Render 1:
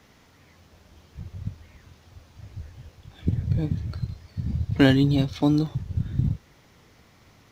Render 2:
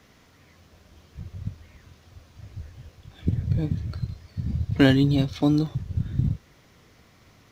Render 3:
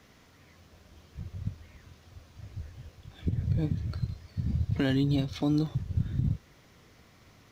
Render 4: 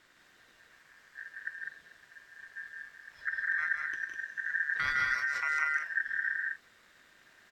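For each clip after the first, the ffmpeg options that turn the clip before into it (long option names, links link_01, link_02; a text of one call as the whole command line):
ffmpeg -i in.wav -af "bandreject=frequency=860:width=12" out.wav
ffmpeg -i in.wav -af "alimiter=limit=-15.5dB:level=0:latency=1:release=147,volume=-2dB" out.wav
ffmpeg -i in.wav -af "aecho=1:1:160.3|201.2:0.562|0.562,aeval=exprs='val(0)*sin(2*PI*1700*n/s)':channel_layout=same,volume=-3dB" out.wav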